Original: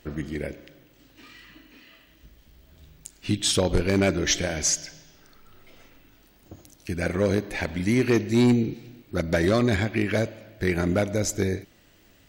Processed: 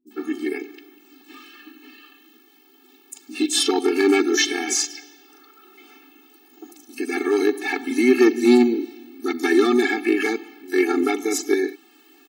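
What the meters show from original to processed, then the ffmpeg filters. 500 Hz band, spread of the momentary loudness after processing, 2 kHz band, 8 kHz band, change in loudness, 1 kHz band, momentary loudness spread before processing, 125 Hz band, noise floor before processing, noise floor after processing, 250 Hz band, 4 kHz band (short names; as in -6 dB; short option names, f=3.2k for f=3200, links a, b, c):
+5.5 dB, 14 LU, +5.5 dB, +2.0 dB, +4.0 dB, +6.5 dB, 12 LU, under -25 dB, -58 dBFS, -54 dBFS, +5.0 dB, +4.0 dB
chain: -filter_complex "[0:a]acrossover=split=180|5900[a][b][c];[c]adelay=70[d];[b]adelay=110[e];[a][e][d]amix=inputs=3:normalize=0,afftfilt=real='re*eq(mod(floor(b*sr/1024/230),2),1)':imag='im*eq(mod(floor(b*sr/1024/230),2),1)':win_size=1024:overlap=0.75,volume=9dB"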